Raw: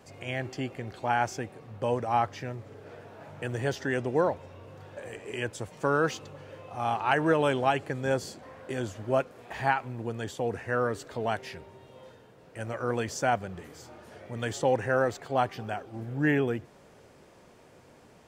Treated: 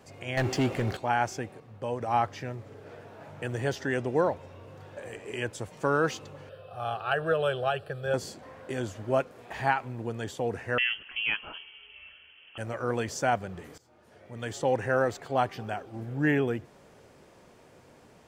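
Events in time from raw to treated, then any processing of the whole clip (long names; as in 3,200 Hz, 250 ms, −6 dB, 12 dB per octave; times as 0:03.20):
0:00.37–0:00.97: leveller curve on the samples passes 3
0:01.60–0:02.01: clip gain −4.5 dB
0:06.49–0:08.14: phaser with its sweep stopped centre 1,400 Hz, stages 8
0:10.78–0:12.58: voice inversion scrambler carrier 3,200 Hz
0:13.78–0:14.85: fade in, from −19.5 dB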